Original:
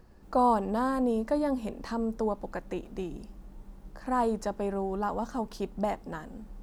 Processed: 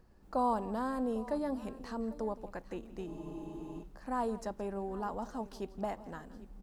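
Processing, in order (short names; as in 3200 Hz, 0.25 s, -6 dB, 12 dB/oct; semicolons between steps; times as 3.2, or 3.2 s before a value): tapped delay 0.167/0.798 s -18/-18 dB; spectral freeze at 3.08, 0.75 s; gain -7 dB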